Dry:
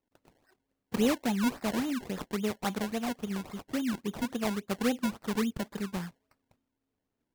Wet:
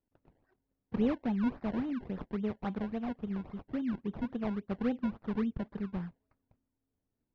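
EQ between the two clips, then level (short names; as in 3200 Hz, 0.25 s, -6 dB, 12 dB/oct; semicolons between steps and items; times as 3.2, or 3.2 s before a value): air absorption 180 m; tape spacing loss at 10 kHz 22 dB; low shelf 160 Hz +8.5 dB; -4.0 dB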